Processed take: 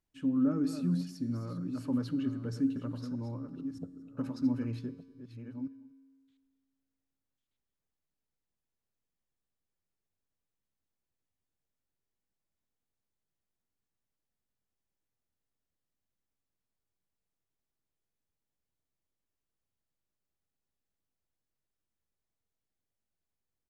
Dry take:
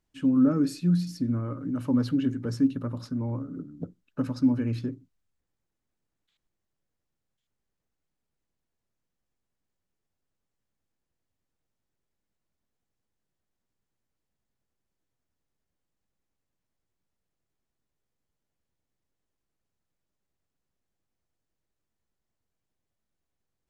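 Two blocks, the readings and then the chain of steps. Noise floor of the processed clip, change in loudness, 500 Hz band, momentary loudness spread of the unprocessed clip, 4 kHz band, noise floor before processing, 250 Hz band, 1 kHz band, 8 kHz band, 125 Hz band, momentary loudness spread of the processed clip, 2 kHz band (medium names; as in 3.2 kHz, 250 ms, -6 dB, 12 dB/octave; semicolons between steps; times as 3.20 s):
under -85 dBFS, -7.5 dB, -7.0 dB, 15 LU, -7.0 dB, -84 dBFS, -6.5 dB, -7.0 dB, no reading, -7.5 dB, 14 LU, -7.0 dB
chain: chunks repeated in reverse 631 ms, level -9.5 dB; feedback comb 90 Hz, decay 1.8 s, harmonics odd, mix 60%; delay 242 ms -22.5 dB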